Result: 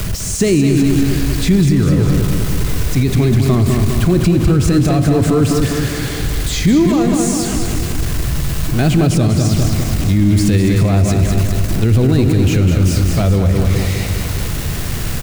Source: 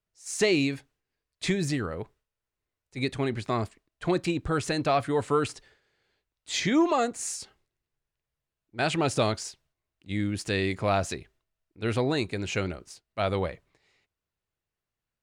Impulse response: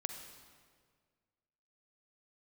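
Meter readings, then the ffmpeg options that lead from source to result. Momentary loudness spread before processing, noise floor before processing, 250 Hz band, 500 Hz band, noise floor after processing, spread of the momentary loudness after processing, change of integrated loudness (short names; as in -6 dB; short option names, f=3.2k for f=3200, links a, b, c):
14 LU, under -85 dBFS, +17.0 dB, +10.0 dB, -20 dBFS, 8 LU, +14.0 dB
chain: -filter_complex "[0:a]aeval=exprs='val(0)+0.5*0.0299*sgn(val(0))':c=same,bass=f=250:g=9,treble=f=4k:g=3,bandreject=f=900:w=19,acrossover=split=390[a][b];[b]acompressor=threshold=-42dB:ratio=2[c];[a][c]amix=inputs=2:normalize=0,aecho=1:1:202|404|606|808|1010|1212|1414|1616:0.531|0.313|0.185|0.109|0.0643|0.038|0.0224|0.0132,asplit=2[d][e];[1:a]atrim=start_sample=2205[f];[e][f]afir=irnorm=-1:irlink=0,volume=6dB[g];[d][g]amix=inputs=2:normalize=0,alimiter=level_in=7.5dB:limit=-1dB:release=50:level=0:latency=1,volume=-3.5dB"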